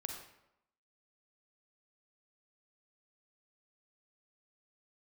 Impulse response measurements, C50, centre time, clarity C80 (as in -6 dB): 3.5 dB, 36 ms, 6.5 dB